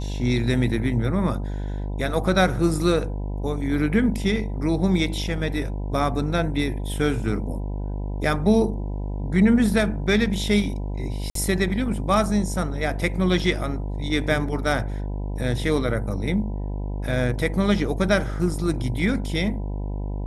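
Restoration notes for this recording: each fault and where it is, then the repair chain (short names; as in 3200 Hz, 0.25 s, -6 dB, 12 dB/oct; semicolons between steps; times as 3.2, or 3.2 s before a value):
buzz 50 Hz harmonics 20 -28 dBFS
11.3–11.35 gap 53 ms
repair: de-hum 50 Hz, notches 20; interpolate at 11.3, 53 ms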